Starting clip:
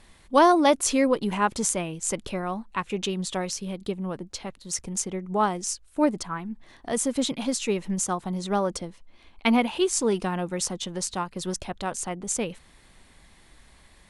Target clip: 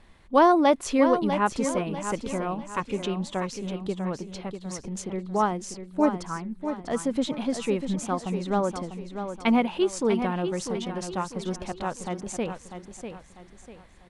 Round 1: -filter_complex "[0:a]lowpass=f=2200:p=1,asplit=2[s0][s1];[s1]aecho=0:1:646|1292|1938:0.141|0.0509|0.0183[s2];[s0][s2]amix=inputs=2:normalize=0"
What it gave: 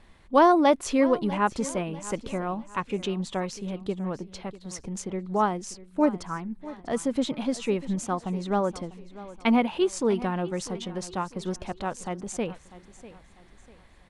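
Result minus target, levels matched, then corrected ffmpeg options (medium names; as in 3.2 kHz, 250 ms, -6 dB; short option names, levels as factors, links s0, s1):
echo-to-direct -8.5 dB
-filter_complex "[0:a]lowpass=f=2200:p=1,asplit=2[s0][s1];[s1]aecho=0:1:646|1292|1938|2584:0.376|0.135|0.0487|0.0175[s2];[s0][s2]amix=inputs=2:normalize=0"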